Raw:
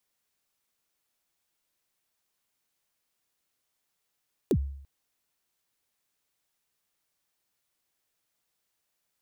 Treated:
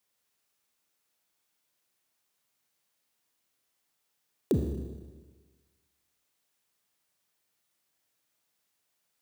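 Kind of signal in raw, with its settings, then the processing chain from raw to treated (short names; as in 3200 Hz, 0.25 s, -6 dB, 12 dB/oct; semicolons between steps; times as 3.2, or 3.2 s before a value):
kick drum length 0.34 s, from 470 Hz, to 69 Hz, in 65 ms, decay 0.68 s, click on, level -18 dB
HPF 72 Hz; Schroeder reverb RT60 1.4 s, combs from 26 ms, DRR 3.5 dB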